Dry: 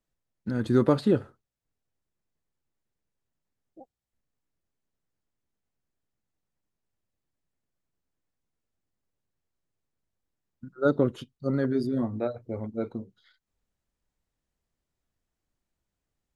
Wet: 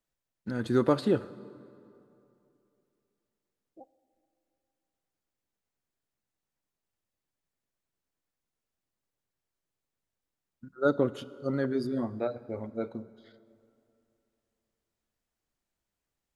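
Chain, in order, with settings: bass shelf 290 Hz -7 dB; plate-style reverb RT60 2.8 s, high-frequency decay 0.65×, DRR 17 dB

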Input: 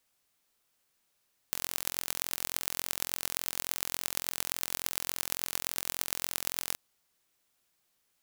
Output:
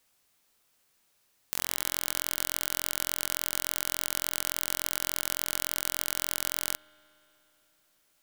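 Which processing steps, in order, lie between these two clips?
peak limiter -7 dBFS, peak gain reduction 5.5 dB; spring tank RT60 3.4 s, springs 59 ms, chirp 55 ms, DRR 19.5 dB; trim +5.5 dB

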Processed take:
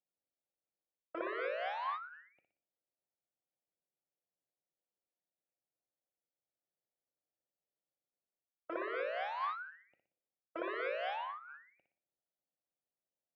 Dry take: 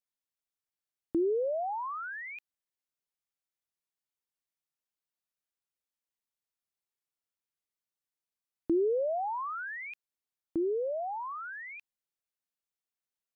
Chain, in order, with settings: local Wiener filter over 41 samples; tilt EQ -4 dB/octave; reverse; compression 20:1, threshold -36 dBFS, peak gain reduction 18.5 dB; reverse; wavefolder -38 dBFS; cabinet simulation 220–2000 Hz, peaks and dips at 230 Hz -4 dB, 330 Hz +6 dB, 530 Hz +6 dB, 750 Hz +4 dB, 1.1 kHz +6 dB, 1.6 kHz +8 dB; flutter echo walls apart 10.3 m, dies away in 0.47 s; on a send at -17 dB: reverberation RT60 0.40 s, pre-delay 5 ms; on the sum: formant shift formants +5 st; trim -1 dB

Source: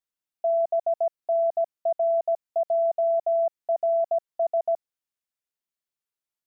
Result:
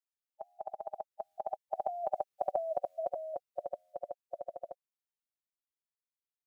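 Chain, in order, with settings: Doppler pass-by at 2.48 s, 24 m/s, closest 15 m; spectral gate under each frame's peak -10 dB weak; trim +12.5 dB

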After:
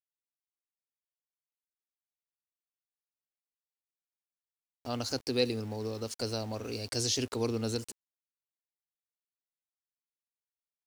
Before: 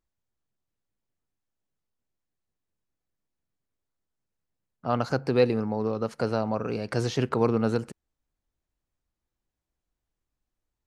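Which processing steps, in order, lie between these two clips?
FFT filter 100 Hz 0 dB, 160 Hz -23 dB, 250 Hz -5 dB, 1.3 kHz -14 dB, 5.3 kHz +10 dB; small samples zeroed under -46.5 dBFS

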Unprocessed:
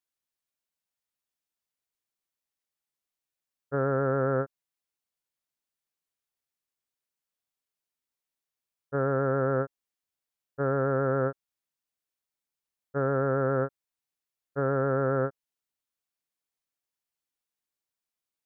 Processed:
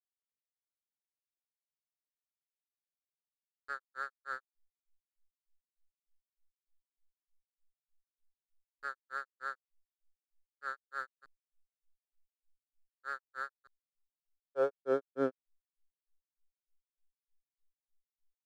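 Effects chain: high-pass sweep 1.6 kHz -> 130 Hz, 13.58–15.87 s; hysteresis with a dead band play -36 dBFS; granulator 164 ms, grains 3.3 per s, pitch spread up and down by 0 st; trim -4.5 dB

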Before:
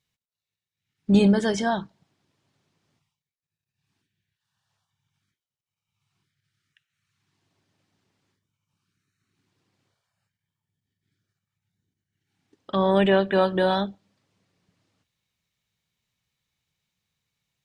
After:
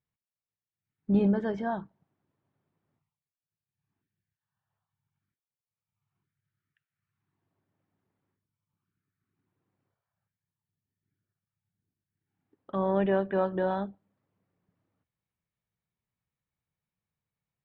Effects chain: low-pass 1.5 kHz 12 dB/octave; trim -6.5 dB

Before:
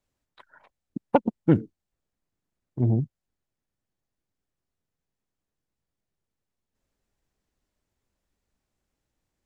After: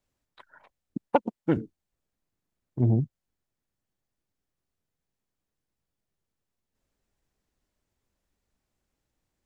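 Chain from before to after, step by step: 1.08–1.57 s: bass shelf 250 Hz -12 dB

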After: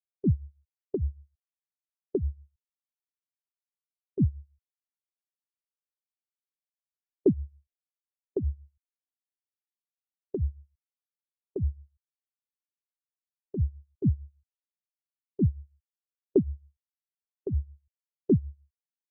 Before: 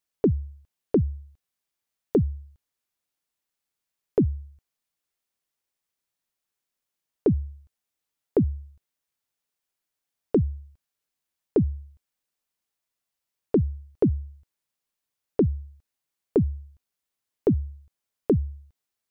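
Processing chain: low-pass that closes with the level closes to 430 Hz, closed at -23 dBFS; tremolo 6.6 Hz, depth 74%; spectral contrast expander 1.5:1

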